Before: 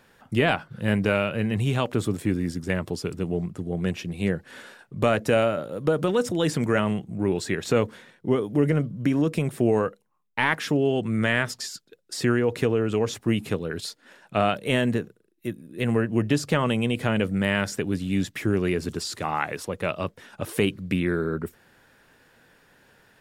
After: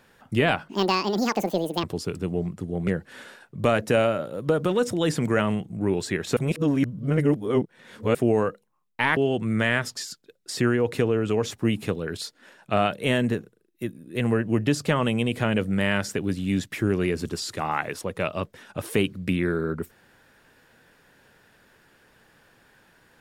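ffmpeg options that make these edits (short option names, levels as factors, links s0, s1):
-filter_complex "[0:a]asplit=7[s0][s1][s2][s3][s4][s5][s6];[s0]atrim=end=0.694[s7];[s1]atrim=start=0.69:end=2.81,asetpts=PTS-STARTPTS,asetrate=81585,aresample=44100,atrim=end_sample=50536,asetpts=PTS-STARTPTS[s8];[s2]atrim=start=2.806:end=3.852[s9];[s3]atrim=start=4.258:end=7.752[s10];[s4]atrim=start=7.748:end=9.532,asetpts=PTS-STARTPTS,areverse[s11];[s5]atrim=start=9.528:end=10.552[s12];[s6]atrim=start=10.798[s13];[s7][s8]acrossfade=d=0.004:c1=hsin:c2=hsin[s14];[s14][s9]acrossfade=d=0.004:c1=hsin:c2=hsin[s15];[s15][s10]acrossfade=d=0.004:c1=hsin:c2=hsin[s16];[s16][s11]acrossfade=d=0.004:c1=hsin:c2=hsin[s17];[s17][s12]acrossfade=d=0.004:c1=hsin:c2=hsin[s18];[s18][s13]acrossfade=d=0.004:c1=hsin:c2=hsin"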